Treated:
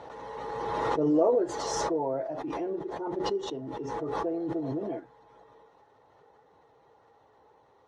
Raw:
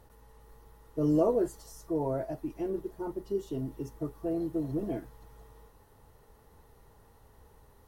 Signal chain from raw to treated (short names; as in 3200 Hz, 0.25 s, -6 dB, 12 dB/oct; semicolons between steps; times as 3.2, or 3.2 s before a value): bin magnitudes rounded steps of 15 dB; speaker cabinet 220–5100 Hz, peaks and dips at 220 Hz -7 dB, 510 Hz +4 dB, 810 Hz +6 dB, 2800 Hz -4 dB, 4800 Hz -8 dB; backwards sustainer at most 21 dB/s